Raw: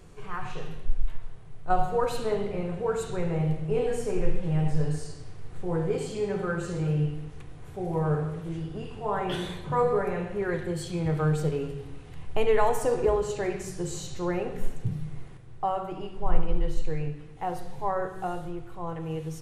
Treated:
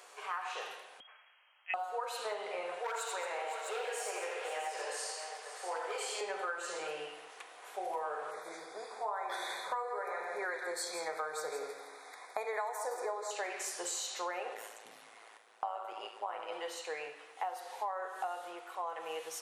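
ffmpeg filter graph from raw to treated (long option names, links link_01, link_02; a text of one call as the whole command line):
ffmpeg -i in.wav -filter_complex "[0:a]asettb=1/sr,asplit=3[link_01][link_02][link_03];[link_01]atrim=end=1.004[link_04];[link_02]atrim=start=1:end=1.74,asetpts=PTS-STARTPTS,afade=type=in:duration=0.004:curve=qsin,afade=type=out:start_time=0.736:duration=0.004:curve=qsin,aderivative,lowpass=frequency=2800:width_type=q:width=0.5098,lowpass=frequency=2800:width_type=q:width=0.6013,lowpass=frequency=2800:width_type=q:width=0.9,lowpass=frequency=2800:width_type=q:width=2.563,afreqshift=-3300,acontrast=27[link_05];[link_03]atrim=start=1.736[link_06];[link_04][link_05]acrossfade=duration=0.004:curve1=hsin:curve2=qsin[link_07];[link_07][link_06]acrossfade=duration=0.004:curve1=qsin:curve2=hsin,asettb=1/sr,asplit=3[link_08][link_09][link_10];[link_08]atrim=end=2.794[link_11];[link_09]atrim=start=2.79:end=6.21,asetpts=PTS-STARTPTS,afade=type=in:duration=0.004:curve=qsin,afade=type=out:start_time=3.416:duration=0.004:curve=qsin,highpass=490,asoftclip=type=hard:threshold=-28dB,aecho=1:1:84|221|513|657:0.596|0.237|0.211|0.299,atrim=end_sample=150822[link_12];[link_10]atrim=start=6.206[link_13];[link_11][link_12]acrossfade=duration=0.004:curve1=hsin:curve2=qsin[link_14];[link_14][link_13]acrossfade=duration=0.004:curve1=qsin:curve2=hsin,asettb=1/sr,asplit=3[link_15][link_16][link_17];[link_15]atrim=end=8.314[link_18];[link_16]atrim=start=8.31:end=13.31,asetpts=PTS-STARTPTS,afade=type=in:duration=0.004:curve=qsin,afade=type=out:start_time=4.996:duration=0.004:curve=qsin,asuperstop=centerf=2900:order=8:qfactor=2.6,aecho=1:1:165:0.316,atrim=end_sample=220500[link_19];[link_17]atrim=start=13.306[link_20];[link_18][link_19]acrossfade=duration=0.004:curve1=hsin:curve2=qsin[link_21];[link_21][link_20]acrossfade=duration=0.004:curve1=qsin:curve2=hsin,asettb=1/sr,asplit=3[link_22][link_23][link_24];[link_22]atrim=end=14.544[link_25];[link_23]atrim=start=14.54:end=16.52,asetpts=PTS-STARTPTS,afade=type=in:duration=0.004:curve=qsin,afade=type=out:start_time=1.976:duration=0.004:curve=qsin,highpass=54,tremolo=f=110:d=0.71[link_26];[link_24]atrim=start=16.516[link_27];[link_25][link_26]acrossfade=duration=0.004:curve1=hsin:curve2=qsin[link_28];[link_28][link_27]acrossfade=duration=0.004:curve1=qsin:curve2=hsin,highpass=frequency=620:width=0.5412,highpass=frequency=620:width=1.3066,acompressor=threshold=-40dB:ratio=8,volume=5.5dB" out.wav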